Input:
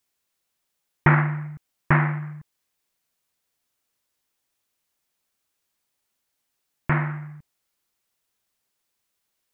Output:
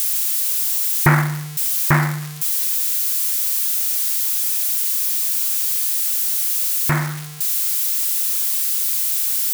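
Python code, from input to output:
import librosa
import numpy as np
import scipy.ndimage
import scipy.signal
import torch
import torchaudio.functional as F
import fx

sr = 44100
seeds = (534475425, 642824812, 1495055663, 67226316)

y = x + 0.5 * 10.0 ** (-19.5 / 20.0) * np.diff(np.sign(x), prepend=np.sign(x[:1]))
y = y * 10.0 ** (3.0 / 20.0)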